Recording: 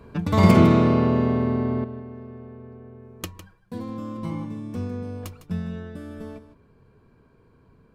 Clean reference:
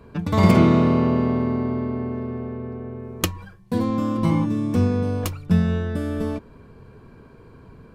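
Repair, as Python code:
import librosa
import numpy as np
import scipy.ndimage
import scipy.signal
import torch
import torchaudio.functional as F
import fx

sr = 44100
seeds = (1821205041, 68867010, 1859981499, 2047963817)

y = fx.fix_echo_inverse(x, sr, delay_ms=155, level_db=-12.5)
y = fx.fix_level(y, sr, at_s=1.84, step_db=11.0)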